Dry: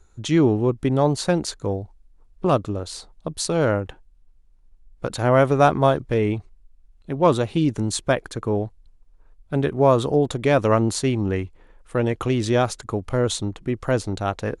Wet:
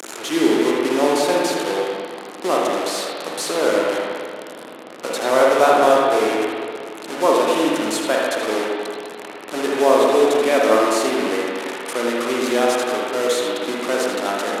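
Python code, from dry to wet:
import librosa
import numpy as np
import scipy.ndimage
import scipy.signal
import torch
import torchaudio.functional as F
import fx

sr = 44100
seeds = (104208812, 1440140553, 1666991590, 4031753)

y = fx.delta_mod(x, sr, bps=64000, step_db=-20.5)
y = scipy.signal.sosfilt(scipy.signal.butter(4, 290.0, 'highpass', fs=sr, output='sos'), y)
y = y + 10.0 ** (-8.5 / 20.0) * np.pad(y, (int(80 * sr / 1000.0), 0))[:len(y)]
y = fx.rev_spring(y, sr, rt60_s=2.1, pass_ms=(46, 55, 59), chirp_ms=55, drr_db=-3.0)
y = F.gain(torch.from_numpy(y), -1.0).numpy()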